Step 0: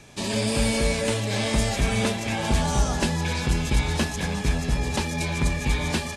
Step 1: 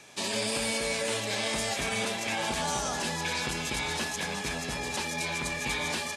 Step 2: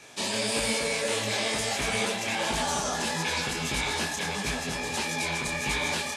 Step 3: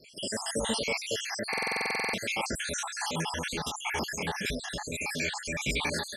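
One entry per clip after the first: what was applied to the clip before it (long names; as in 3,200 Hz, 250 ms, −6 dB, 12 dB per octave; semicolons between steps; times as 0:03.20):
high-pass filter 600 Hz 6 dB per octave; brickwall limiter −20 dBFS, peak gain reduction 9 dB
micro pitch shift up and down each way 54 cents; level +6 dB
time-frequency cells dropped at random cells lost 67%; buffer that repeats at 0:01.49, samples 2,048, times 13; level +1 dB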